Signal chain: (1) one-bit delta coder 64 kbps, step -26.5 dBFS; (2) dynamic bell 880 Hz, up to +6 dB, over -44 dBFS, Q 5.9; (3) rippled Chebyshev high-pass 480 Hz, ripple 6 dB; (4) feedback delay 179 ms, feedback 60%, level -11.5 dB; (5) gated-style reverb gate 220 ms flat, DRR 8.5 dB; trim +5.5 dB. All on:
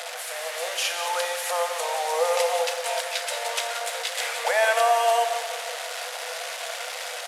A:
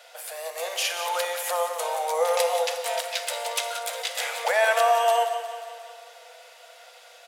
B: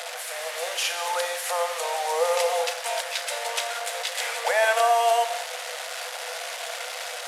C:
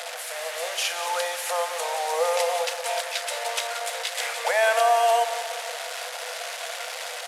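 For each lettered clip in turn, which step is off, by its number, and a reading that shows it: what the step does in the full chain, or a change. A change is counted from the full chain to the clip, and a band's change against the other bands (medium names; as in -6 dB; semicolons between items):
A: 1, 500 Hz band +2.0 dB; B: 4, echo-to-direct -5.5 dB to -8.5 dB; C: 5, echo-to-direct -5.5 dB to -9.5 dB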